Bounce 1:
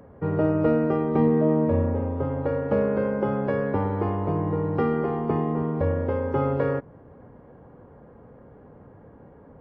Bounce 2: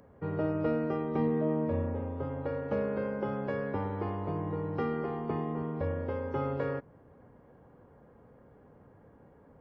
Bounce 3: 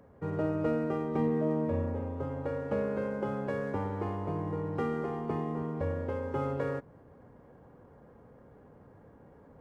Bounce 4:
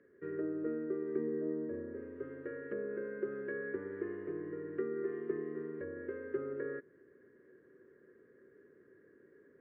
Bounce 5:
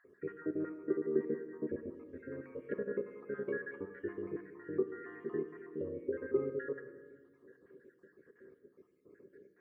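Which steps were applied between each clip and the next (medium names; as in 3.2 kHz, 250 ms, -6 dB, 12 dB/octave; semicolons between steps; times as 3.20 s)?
treble shelf 2.4 kHz +9 dB; trim -9 dB
median filter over 9 samples; reverse; upward compressor, threshold -50 dBFS; reverse
low-pass that closes with the level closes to 1.1 kHz, closed at -27.5 dBFS; two resonant band-passes 810 Hz, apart 2.2 oct; trim +5 dB
random holes in the spectrogram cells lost 62%; reverberation RT60 1.6 s, pre-delay 4 ms, DRR 8.5 dB; trim +4 dB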